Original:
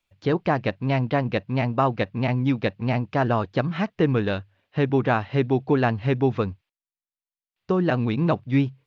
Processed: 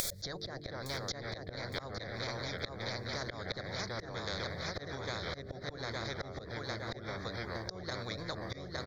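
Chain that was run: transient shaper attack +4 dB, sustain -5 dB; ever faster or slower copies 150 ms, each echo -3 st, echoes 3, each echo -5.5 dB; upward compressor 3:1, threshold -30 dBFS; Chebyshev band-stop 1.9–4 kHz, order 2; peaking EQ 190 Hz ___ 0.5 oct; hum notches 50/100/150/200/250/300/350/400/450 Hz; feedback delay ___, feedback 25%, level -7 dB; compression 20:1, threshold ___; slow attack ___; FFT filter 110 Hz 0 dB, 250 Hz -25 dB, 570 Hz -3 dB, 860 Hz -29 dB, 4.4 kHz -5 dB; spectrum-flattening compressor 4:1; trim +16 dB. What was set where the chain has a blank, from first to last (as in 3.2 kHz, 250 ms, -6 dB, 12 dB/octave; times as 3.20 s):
+8 dB, 862 ms, -28 dBFS, 235 ms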